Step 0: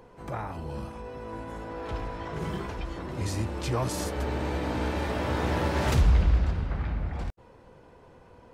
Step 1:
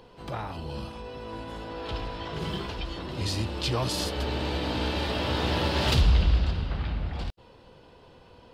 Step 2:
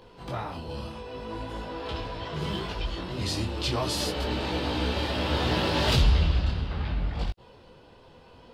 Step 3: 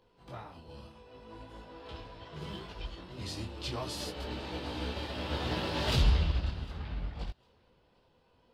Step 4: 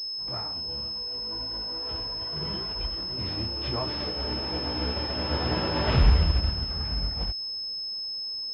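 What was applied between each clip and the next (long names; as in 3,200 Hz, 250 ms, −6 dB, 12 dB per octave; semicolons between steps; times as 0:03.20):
flat-topped bell 3,700 Hz +10.5 dB 1.1 octaves
micro pitch shift up and down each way 24 cents; level +4.5 dB
feedback echo with a high-pass in the loop 754 ms, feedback 24%, high-pass 220 Hz, level −21 dB; expander for the loud parts 1.5 to 1, over −41 dBFS; level −3.5 dB
variable-slope delta modulation 64 kbit/s; switching amplifier with a slow clock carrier 5,200 Hz; level +6.5 dB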